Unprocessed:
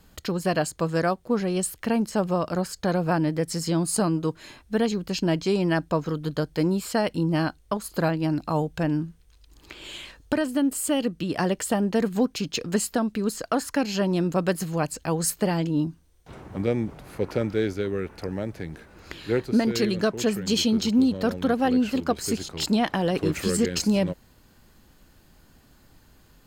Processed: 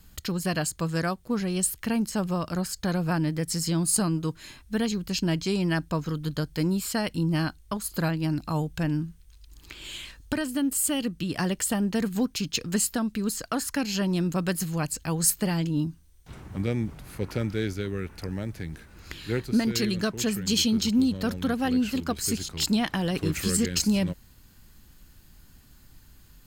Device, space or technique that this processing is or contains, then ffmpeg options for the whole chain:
smiley-face EQ: -af "lowshelf=f=100:g=5.5,equalizer=f=560:t=o:w=1.9:g=-8,highshelf=f=7.6k:g=6.5"

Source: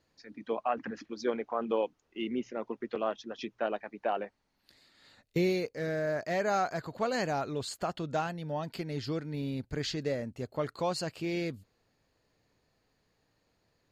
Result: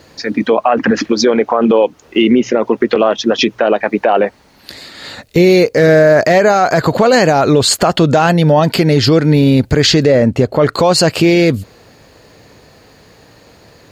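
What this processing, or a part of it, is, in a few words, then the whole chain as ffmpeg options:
mastering chain: -filter_complex "[0:a]highpass=44,equalizer=f=500:t=o:w=0.84:g=2.5,acompressor=threshold=-35dB:ratio=2,alimiter=level_in=31dB:limit=-1dB:release=50:level=0:latency=1,asettb=1/sr,asplit=3[a][b][c];[a]atrim=end=10.064[d];[b]atrim=start=10.06:end=10.73,asetpts=PTS-STARTPTS,afade=t=in:d=0.004:c=qsin,afade=t=out:st=0.666:d=0.004:c=qsin,aemphasis=mode=reproduction:type=cd[e];[c]atrim=start=10.726[f];[d][e]acrossfade=d=0.004:c1=hsin:c2=qsin[g];[g][f]acrossfade=d=0.004:c1=qsin:c2=hsin,volume=-1dB"

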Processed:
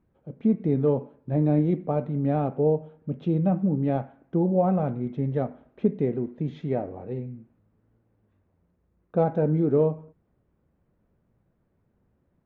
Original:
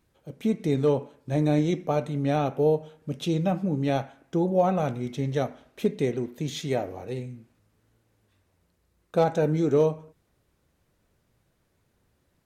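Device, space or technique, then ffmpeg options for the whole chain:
phone in a pocket: -af "lowpass=f=1.3k:p=1,lowpass=3.4k,equalizer=f=200:t=o:w=0.77:g=4.5,highshelf=f=2.1k:g=-8"

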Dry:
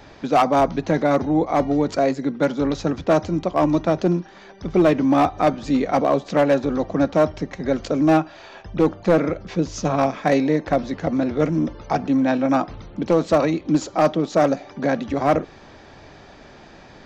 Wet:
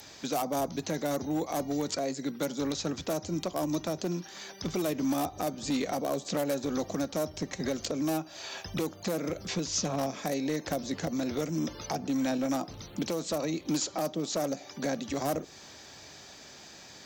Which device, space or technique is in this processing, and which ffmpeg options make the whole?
FM broadcast chain: -filter_complex "[0:a]highpass=69,dynaudnorm=f=260:g=31:m=11.5dB,acrossover=split=790|4700[a][b][c];[a]acompressor=threshold=-16dB:ratio=4[d];[b]acompressor=threshold=-34dB:ratio=4[e];[c]acompressor=threshold=-53dB:ratio=4[f];[d][e][f]amix=inputs=3:normalize=0,aemphasis=mode=production:type=75fm,alimiter=limit=-12dB:level=0:latency=1:release=416,asoftclip=type=hard:threshold=-15dB,lowpass=f=15k:w=0.5412,lowpass=f=15k:w=1.3066,aemphasis=mode=production:type=75fm,volume=-8dB"

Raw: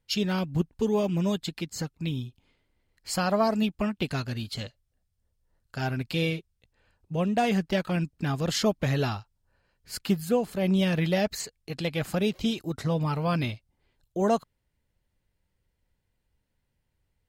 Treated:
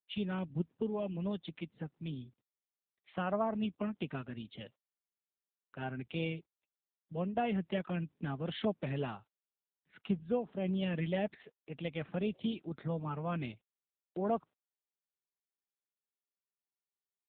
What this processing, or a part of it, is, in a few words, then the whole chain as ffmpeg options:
mobile call with aggressive noise cancelling: -af "highpass=f=140:w=0.5412,highpass=f=140:w=1.3066,afftdn=nr=32:nf=-50,volume=-8dB" -ar 8000 -c:a libopencore_amrnb -b:a 7950

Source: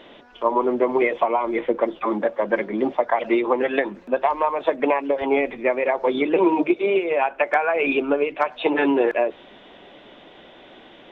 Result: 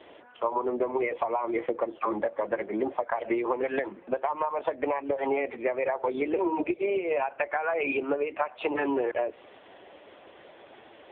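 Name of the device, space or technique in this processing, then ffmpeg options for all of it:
voicemail: -af "highpass=330,lowpass=2.7k,acompressor=threshold=-23dB:ratio=8" -ar 8000 -c:a libopencore_amrnb -b:a 6700

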